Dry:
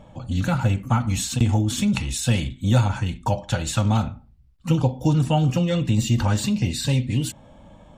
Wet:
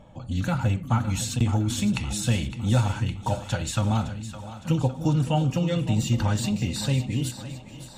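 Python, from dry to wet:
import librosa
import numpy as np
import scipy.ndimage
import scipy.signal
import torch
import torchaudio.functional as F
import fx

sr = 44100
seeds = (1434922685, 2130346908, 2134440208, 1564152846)

y = fx.echo_split(x, sr, split_hz=360.0, low_ms=290, high_ms=561, feedback_pct=52, wet_db=-12)
y = y * 10.0 ** (-3.5 / 20.0)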